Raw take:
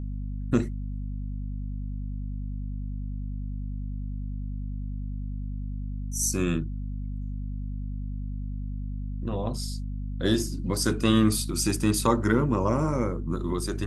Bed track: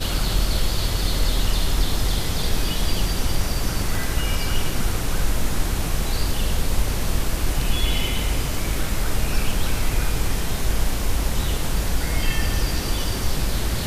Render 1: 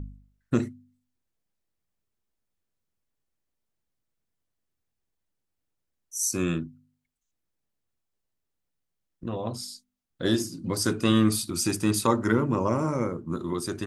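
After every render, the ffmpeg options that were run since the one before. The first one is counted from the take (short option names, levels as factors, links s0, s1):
-af "bandreject=f=50:t=h:w=4,bandreject=f=100:t=h:w=4,bandreject=f=150:t=h:w=4,bandreject=f=200:t=h:w=4,bandreject=f=250:t=h:w=4"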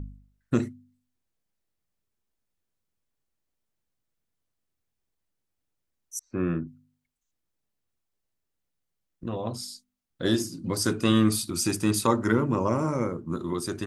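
-filter_complex "[0:a]asettb=1/sr,asplit=3[s0][s1][s2];[s0]atrim=end=6.194[s3];[s1]atrim=start=6.19:end=6.67,asetpts=PTS-STARTPTS,afade=t=in:d=0.004:c=qsin,afade=t=out:st=0.476:d=0.004:c=qsin,lowpass=f=1900:w=0.5412,lowpass=f=1900:w=1.3066[s4];[s2]atrim=start=6.666[s5];[s3][s4]acrossfade=d=0.004:c1=hsin:c2=qsin[s6];[s6][s5]acrossfade=d=0.004:c1=qsin:c2=hsin"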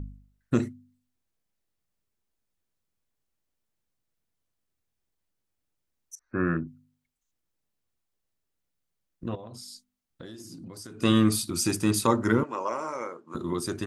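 -filter_complex "[0:a]asettb=1/sr,asplit=3[s0][s1][s2];[s0]atrim=end=6.154[s3];[s1]atrim=start=6.15:end=6.57,asetpts=PTS-STARTPTS,afade=t=in:d=0.004:c=qsin,afade=t=out:st=0.416:d=0.004:c=qsin,lowpass=f=1600:t=q:w=4.3[s4];[s2]atrim=start=6.566[s5];[s3][s4]acrossfade=d=0.004:c1=hsin:c2=qsin[s6];[s6][s5]acrossfade=d=0.004:c1=qsin:c2=hsin,asettb=1/sr,asplit=3[s7][s8][s9];[s7]atrim=end=9.354[s10];[s8]atrim=start=9.35:end=11.02,asetpts=PTS-STARTPTS,afade=t=in:d=0.004:c=qsin,afade=t=out:st=1.666:d=0.004:c=qsin,acompressor=threshold=0.0112:ratio=12:attack=3.2:release=140:knee=1:detection=peak[s11];[s9]atrim=start=11.016[s12];[s10][s11]acrossfade=d=0.004:c1=hsin:c2=qsin[s13];[s13][s12]acrossfade=d=0.004:c1=qsin:c2=hsin,asettb=1/sr,asplit=3[s14][s15][s16];[s14]atrim=end=12.434[s17];[s15]atrim=start=12.43:end=13.35,asetpts=PTS-STARTPTS,afade=t=in:d=0.004:c=qsin,afade=t=out:st=0.916:d=0.004:c=qsin,highpass=640,lowpass=7800[s18];[s16]atrim=start=13.346[s19];[s17][s18]acrossfade=d=0.004:c1=hsin:c2=qsin[s20];[s20][s19]acrossfade=d=0.004:c1=qsin:c2=hsin"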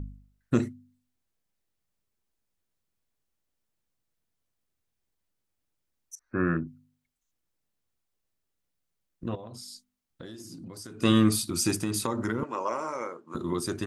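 -filter_complex "[0:a]asettb=1/sr,asplit=3[s0][s1][s2];[s0]atrim=end=11.784[s3];[s1]atrim=start=11.78:end=12.43,asetpts=PTS-STARTPTS,afade=t=in:d=0.004:c=qsin,afade=t=out:st=0.646:d=0.004:c=qsin,acompressor=threshold=0.0631:ratio=10:attack=3.2:release=140:knee=1:detection=peak[s4];[s2]atrim=start=12.426[s5];[s3][s4]acrossfade=d=0.004:c1=hsin:c2=qsin[s6];[s6][s5]acrossfade=d=0.004:c1=qsin:c2=hsin"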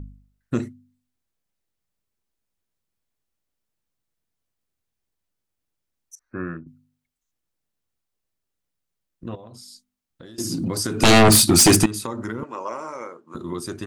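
-filter_complex "[0:a]asettb=1/sr,asplit=3[s0][s1][s2];[s0]atrim=end=10.384[s3];[s1]atrim=start=10.38:end=11.86,asetpts=PTS-STARTPTS,afade=t=in:d=0.004:c=qsin,afade=t=out:st=1.476:d=0.004:c=qsin,aeval=exprs='0.376*sin(PI/2*5.01*val(0)/0.376)':c=same[s4];[s2]atrim=start=11.856[s5];[s3][s4]acrossfade=d=0.004:c1=hsin:c2=qsin[s6];[s6][s5]acrossfade=d=0.004:c1=qsin:c2=hsin,asplit=2[s7][s8];[s7]atrim=end=6.66,asetpts=PTS-STARTPTS,afade=t=out:st=6.22:d=0.44:silence=0.281838[s9];[s8]atrim=start=6.66,asetpts=PTS-STARTPTS,afade=t=in:d=0.004:c=hsin:silence=0.281838[s10];[s9][s10]concat=n=2:v=0:a=1"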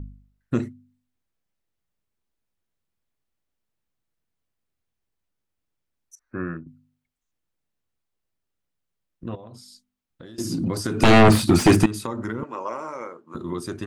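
-filter_complex "[0:a]acrossover=split=2900[s0][s1];[s1]acompressor=threshold=0.0631:ratio=4:attack=1:release=60[s2];[s0][s2]amix=inputs=2:normalize=0,bass=f=250:g=1,treble=f=4000:g=-5"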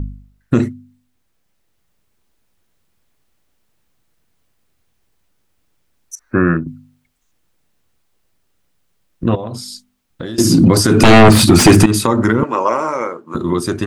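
-af "dynaudnorm=f=340:g=9:m=1.68,alimiter=level_in=4.47:limit=0.891:release=50:level=0:latency=1"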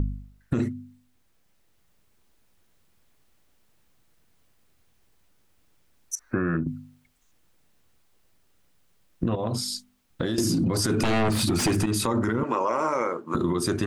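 -af "alimiter=limit=0.299:level=0:latency=1:release=39,acompressor=threshold=0.0891:ratio=6"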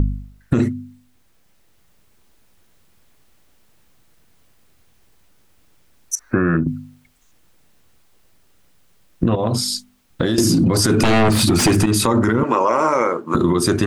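-af "volume=2.66"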